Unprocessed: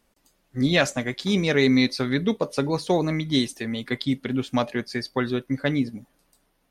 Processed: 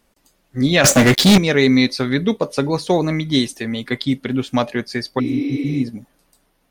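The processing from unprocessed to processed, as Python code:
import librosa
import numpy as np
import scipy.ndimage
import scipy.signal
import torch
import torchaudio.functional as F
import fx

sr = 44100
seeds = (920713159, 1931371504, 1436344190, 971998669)

y = fx.leveller(x, sr, passes=5, at=(0.84, 1.38))
y = fx.spec_repair(y, sr, seeds[0], start_s=5.22, length_s=0.56, low_hz=270.0, high_hz=5800.0, source='after')
y = y * 10.0 ** (5.0 / 20.0)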